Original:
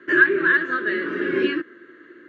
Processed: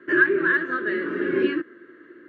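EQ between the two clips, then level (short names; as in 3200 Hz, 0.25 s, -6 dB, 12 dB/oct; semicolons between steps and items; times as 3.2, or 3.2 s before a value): high shelf 2300 Hz -9.5 dB; 0.0 dB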